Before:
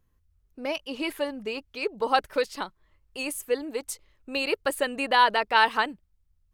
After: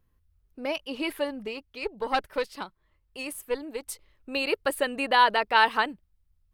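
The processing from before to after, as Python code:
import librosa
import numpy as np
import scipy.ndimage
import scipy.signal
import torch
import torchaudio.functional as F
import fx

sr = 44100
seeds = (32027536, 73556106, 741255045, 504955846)

y = fx.tube_stage(x, sr, drive_db=14.0, bias=0.65, at=(1.47, 3.87))
y = fx.peak_eq(y, sr, hz=6800.0, db=-6.0, octaves=0.54)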